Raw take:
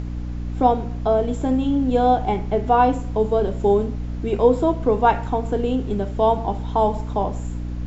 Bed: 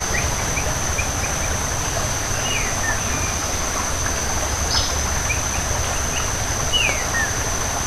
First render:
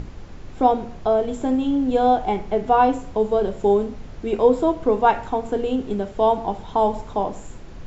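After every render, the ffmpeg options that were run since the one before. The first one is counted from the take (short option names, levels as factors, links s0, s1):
-af "bandreject=f=60:t=h:w=6,bandreject=f=120:t=h:w=6,bandreject=f=180:t=h:w=6,bandreject=f=240:t=h:w=6,bandreject=f=300:t=h:w=6"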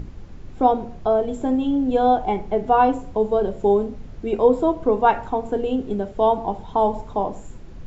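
-af "afftdn=nr=6:nf=-38"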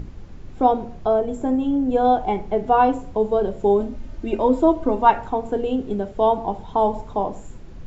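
-filter_complex "[0:a]asettb=1/sr,asplit=3[s0][s1][s2];[s0]atrim=end=1.194[s3];[s1]atrim=start=1.19:end=2.05,asetpts=PTS-STARTPTS,afade=t=in:d=0.004:c=qsin,afade=t=out:st=0.856:d=0.004:c=qsin,equalizer=f=3600:t=o:w=1:g=-6[s4];[s2]atrim=start=2.046[s5];[s3][s4]acrossfade=d=0.004:c1=hsin:c2=qsin[s6];[s6][s5]acrossfade=d=0.004:c1=qsin:c2=hsin,asettb=1/sr,asplit=3[s7][s8][s9];[s7]atrim=end=3.804[s10];[s8]atrim=start=3.8:end=5.1,asetpts=PTS-STARTPTS,afade=t=in:d=0.004:c=qsin,afade=t=out:st=1.296:d=0.004:c=qsin,aecho=1:1:3.3:0.65,atrim=end_sample=57330[s11];[s9]atrim=start=5.096[s12];[s10][s11]acrossfade=d=0.004:c1=hsin:c2=qsin[s13];[s13][s12]acrossfade=d=0.004:c1=qsin:c2=hsin"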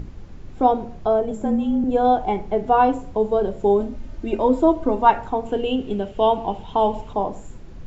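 -filter_complex "[0:a]asettb=1/sr,asplit=3[s0][s1][s2];[s0]atrim=end=1.314[s3];[s1]atrim=start=1.31:end=1.84,asetpts=PTS-STARTPTS,afade=t=in:d=0.004:c=qsin,afade=t=out:st=0.526:d=0.004:c=qsin,afreqshift=-28[s4];[s2]atrim=start=1.836[s5];[s3][s4]acrossfade=d=0.004:c1=hsin:c2=qsin[s6];[s6][s5]acrossfade=d=0.004:c1=qsin:c2=hsin,asettb=1/sr,asplit=3[s7][s8][s9];[s7]atrim=end=5.464[s10];[s8]atrim=start=5.46:end=7.13,asetpts=PTS-STARTPTS,afade=t=in:d=0.004:c=qsin,afade=t=out:st=1.666:d=0.004:c=qsin,equalizer=f=2900:w=3.5:g=12.5[s11];[s9]atrim=start=7.126[s12];[s10][s11]acrossfade=d=0.004:c1=hsin:c2=qsin[s13];[s13][s12]acrossfade=d=0.004:c1=qsin:c2=hsin"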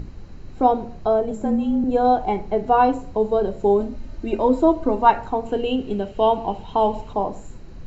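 -af "equalizer=f=4000:w=7.6:g=9,bandreject=f=3500:w=6.7"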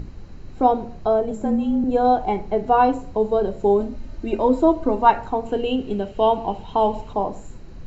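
-af anull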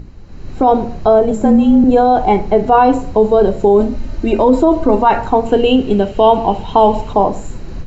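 -af "alimiter=limit=0.211:level=0:latency=1:release=27,dynaudnorm=f=260:g=3:m=5.31"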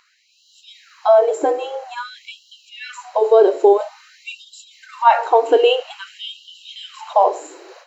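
-af "afftfilt=real='re*gte(b*sr/1024,290*pow(2800/290,0.5+0.5*sin(2*PI*0.5*pts/sr)))':imag='im*gte(b*sr/1024,290*pow(2800/290,0.5+0.5*sin(2*PI*0.5*pts/sr)))':win_size=1024:overlap=0.75"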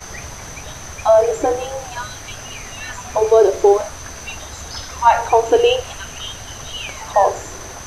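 -filter_complex "[1:a]volume=0.282[s0];[0:a][s0]amix=inputs=2:normalize=0"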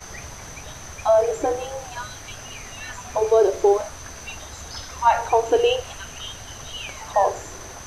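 -af "volume=0.562"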